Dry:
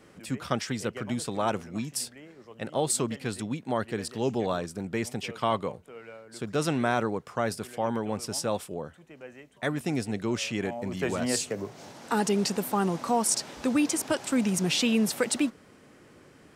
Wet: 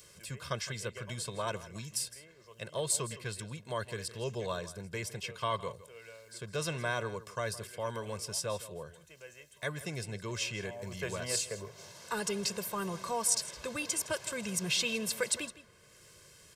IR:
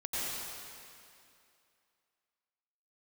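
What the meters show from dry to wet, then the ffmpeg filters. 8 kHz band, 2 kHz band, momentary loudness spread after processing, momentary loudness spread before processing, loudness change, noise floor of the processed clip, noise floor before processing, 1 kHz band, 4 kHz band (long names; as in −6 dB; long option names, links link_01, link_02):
−2.0 dB, −3.5 dB, 16 LU, 13 LU, −6.5 dB, −59 dBFS, −55 dBFS, −8.0 dB, −3.0 dB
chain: -filter_complex "[0:a]equalizer=frequency=430:width=0.41:gain=-7,aecho=1:1:1.9:0.79,acrossover=split=3900[link_01][link_02];[link_02]acompressor=mode=upward:threshold=-43dB:ratio=2.5[link_03];[link_01][link_03]amix=inputs=2:normalize=0,aecho=1:1:162:0.15,volume=-4.5dB"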